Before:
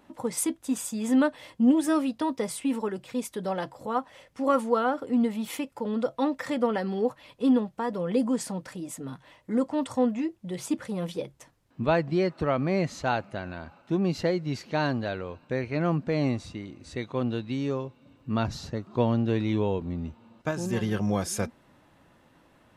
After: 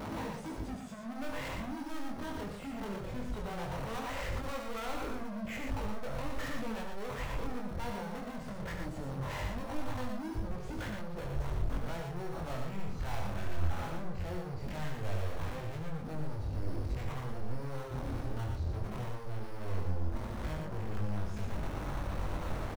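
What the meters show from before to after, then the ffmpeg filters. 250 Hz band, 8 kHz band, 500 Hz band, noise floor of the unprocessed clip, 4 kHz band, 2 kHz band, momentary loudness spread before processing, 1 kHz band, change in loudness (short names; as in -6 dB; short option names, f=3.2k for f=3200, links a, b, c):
-14.5 dB, -15.0 dB, -13.0 dB, -61 dBFS, -7.0 dB, -7.0 dB, 12 LU, -9.0 dB, -11.0 dB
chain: -filter_complex "[0:a]aeval=exprs='val(0)+0.5*0.0398*sgn(val(0))':c=same,acrossover=split=5100[a][b];[b]acompressor=threshold=-48dB:ratio=4:attack=1:release=60[c];[a][c]amix=inputs=2:normalize=0,afwtdn=0.02,asplit=2[d][e];[e]acrusher=samples=9:mix=1:aa=0.000001,volume=-5dB[f];[d][f]amix=inputs=2:normalize=0,lowshelf=f=210:t=q:w=1.5:g=6.5,acompressor=threshold=-26dB:ratio=6,asoftclip=type=hard:threshold=-37.5dB,flanger=delay=19:depth=6.1:speed=0.19,asplit=2[g][h];[h]aecho=0:1:72|117:0.422|0.562[i];[g][i]amix=inputs=2:normalize=0,asubboost=boost=5.5:cutoff=61,volume=1.5dB"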